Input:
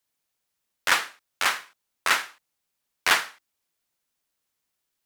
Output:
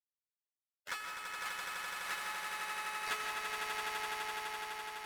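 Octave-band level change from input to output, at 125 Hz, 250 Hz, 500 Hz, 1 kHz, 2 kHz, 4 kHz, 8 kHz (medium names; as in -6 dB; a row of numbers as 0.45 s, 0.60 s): no reading, -11.0 dB, -8.5 dB, -8.5 dB, -11.5 dB, -12.5 dB, -12.0 dB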